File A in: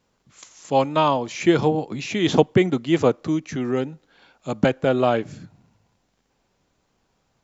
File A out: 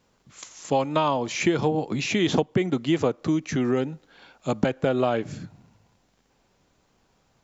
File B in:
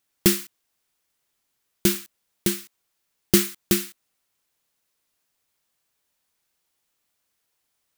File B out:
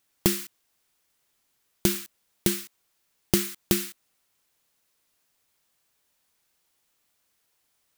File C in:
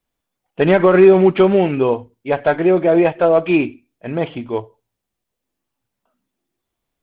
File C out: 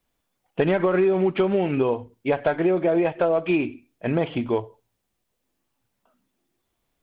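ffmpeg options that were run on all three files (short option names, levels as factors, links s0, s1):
-af "acompressor=threshold=0.0794:ratio=5,volume=1.41"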